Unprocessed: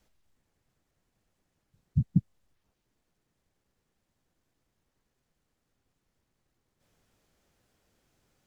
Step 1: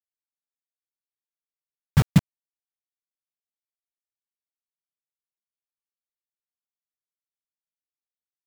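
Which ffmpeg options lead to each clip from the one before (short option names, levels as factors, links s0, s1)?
-af "acrusher=bits=4:mix=0:aa=0.000001,volume=2.24"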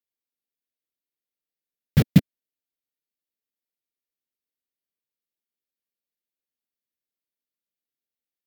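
-af "equalizer=f=250:t=o:w=1:g=9,equalizer=f=500:t=o:w=1:g=8,equalizer=f=1000:t=o:w=1:g=-11,equalizer=f=2000:t=o:w=1:g=4,equalizer=f=4000:t=o:w=1:g=4,equalizer=f=8000:t=o:w=1:g=-6,equalizer=f=16000:t=o:w=1:g=9,volume=0.75"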